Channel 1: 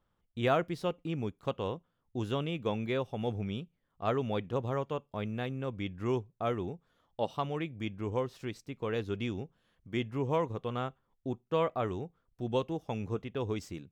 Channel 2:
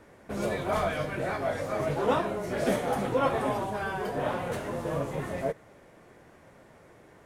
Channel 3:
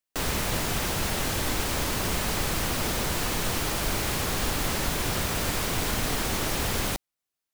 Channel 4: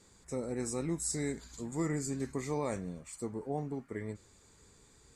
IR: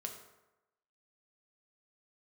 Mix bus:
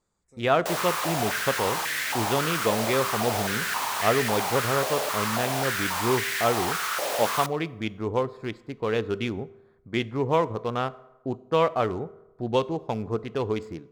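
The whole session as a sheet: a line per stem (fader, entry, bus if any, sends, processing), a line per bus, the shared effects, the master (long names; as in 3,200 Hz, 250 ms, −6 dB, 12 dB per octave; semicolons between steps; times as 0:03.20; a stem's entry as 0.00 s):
0.0 dB, 0.00 s, send −8.5 dB, adaptive Wiener filter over 15 samples; low-shelf EQ 350 Hz −7.5 dB; automatic gain control gain up to 8.5 dB
−20.0 dB, 0.35 s, no send, no processing
−3.0 dB, 0.50 s, send −13 dB, high-pass on a step sequencer 3.7 Hz 580–1,800 Hz
−18.5 dB, 0.00 s, no send, no processing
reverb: on, RT60 1.0 s, pre-delay 4 ms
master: no processing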